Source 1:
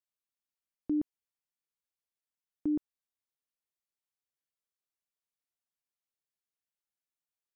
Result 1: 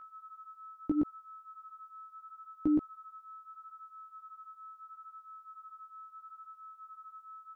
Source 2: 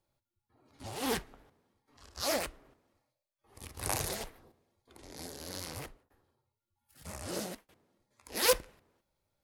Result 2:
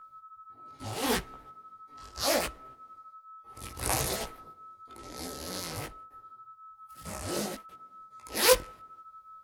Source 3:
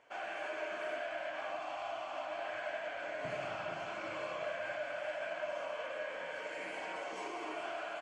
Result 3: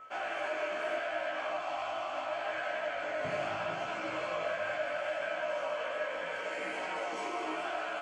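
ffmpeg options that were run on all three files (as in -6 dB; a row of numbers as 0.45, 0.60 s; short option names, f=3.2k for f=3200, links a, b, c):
-af "acontrast=32,aeval=exprs='val(0)+0.00447*sin(2*PI*1300*n/s)':c=same,flanger=delay=15.5:depth=4.4:speed=0.75,volume=2.5dB"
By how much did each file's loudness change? -6.0, +4.5, +5.0 LU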